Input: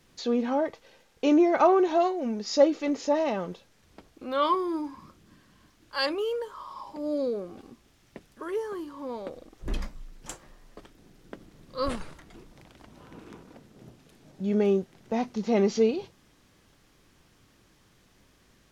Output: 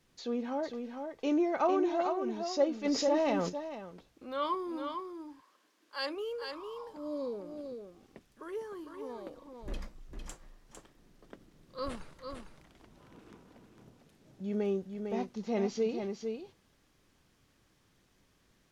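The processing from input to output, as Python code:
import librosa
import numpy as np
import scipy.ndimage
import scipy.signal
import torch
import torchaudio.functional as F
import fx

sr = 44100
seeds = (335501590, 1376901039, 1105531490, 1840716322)

p1 = fx.highpass(x, sr, hz=fx.line((4.95, 540.0), (6.15, 200.0)), slope=24, at=(4.95, 6.15), fade=0.02)
p2 = p1 + fx.echo_single(p1, sr, ms=453, db=-6.0, dry=0)
p3 = fx.env_flatten(p2, sr, amount_pct=50, at=(2.84, 3.48), fade=0.02)
y = p3 * 10.0 ** (-8.5 / 20.0)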